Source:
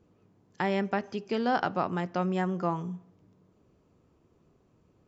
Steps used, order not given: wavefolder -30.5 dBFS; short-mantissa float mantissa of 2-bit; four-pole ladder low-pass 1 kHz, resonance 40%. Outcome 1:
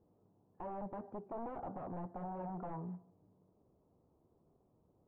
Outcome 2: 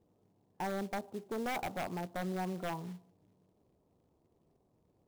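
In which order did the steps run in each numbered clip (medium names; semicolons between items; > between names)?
short-mantissa float > wavefolder > four-pole ladder low-pass; four-pole ladder low-pass > short-mantissa float > wavefolder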